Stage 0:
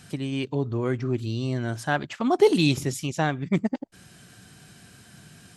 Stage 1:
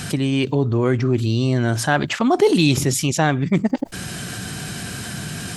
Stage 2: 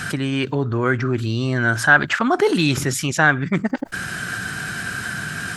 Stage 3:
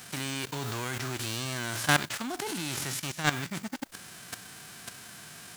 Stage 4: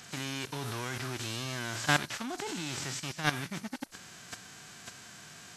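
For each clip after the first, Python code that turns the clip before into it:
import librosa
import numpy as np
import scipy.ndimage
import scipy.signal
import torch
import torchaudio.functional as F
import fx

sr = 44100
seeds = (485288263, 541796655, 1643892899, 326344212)

y1 = fx.env_flatten(x, sr, amount_pct=50)
y1 = y1 * librosa.db_to_amplitude(1.5)
y2 = fx.peak_eq(y1, sr, hz=1500.0, db=14.5, octaves=0.8)
y2 = y2 * librosa.db_to_amplitude(-3.0)
y3 = fx.envelope_flatten(y2, sr, power=0.3)
y3 = fx.level_steps(y3, sr, step_db=13)
y3 = y3 * librosa.db_to_amplitude(-8.0)
y4 = fx.freq_compress(y3, sr, knee_hz=3900.0, ratio=1.5)
y4 = y4 * librosa.db_to_amplitude(-2.5)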